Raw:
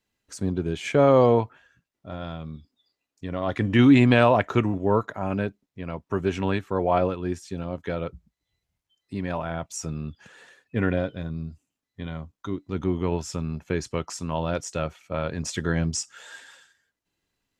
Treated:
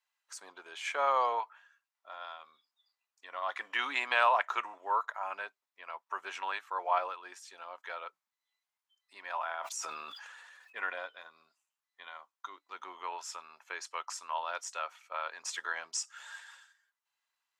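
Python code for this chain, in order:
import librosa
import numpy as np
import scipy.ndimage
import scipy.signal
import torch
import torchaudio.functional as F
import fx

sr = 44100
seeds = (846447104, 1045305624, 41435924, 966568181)

y = fx.ladder_highpass(x, sr, hz=820.0, resonance_pct=40)
y = fx.sustainer(y, sr, db_per_s=25.0, at=(9.34, 10.79))
y = y * 10.0 ** (2.5 / 20.0)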